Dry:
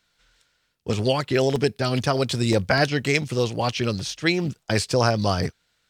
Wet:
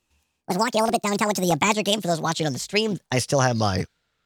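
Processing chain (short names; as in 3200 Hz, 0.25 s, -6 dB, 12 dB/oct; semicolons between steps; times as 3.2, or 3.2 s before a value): speed glide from 184% -> 93%; mismatched tape noise reduction decoder only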